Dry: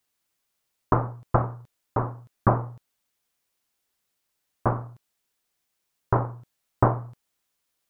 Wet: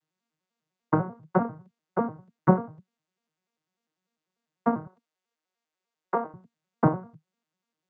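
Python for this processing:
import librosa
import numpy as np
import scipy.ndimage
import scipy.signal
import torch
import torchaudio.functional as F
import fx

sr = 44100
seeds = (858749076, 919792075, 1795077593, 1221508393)

y = fx.vocoder_arp(x, sr, chord='minor triad', root=51, every_ms=99)
y = fx.highpass(y, sr, hz=400.0, slope=12, at=(4.87, 6.34))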